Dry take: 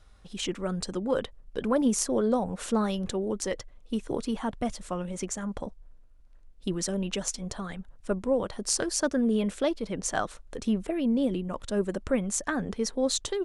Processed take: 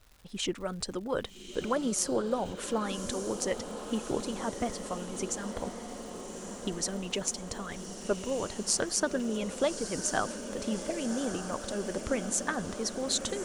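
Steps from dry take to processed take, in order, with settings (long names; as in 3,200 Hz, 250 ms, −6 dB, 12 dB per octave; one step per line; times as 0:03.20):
harmonic and percussive parts rebalanced harmonic −8 dB
feedback delay with all-pass diffusion 1,189 ms, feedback 70%, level −9 dB
surface crackle 240 per second −46 dBFS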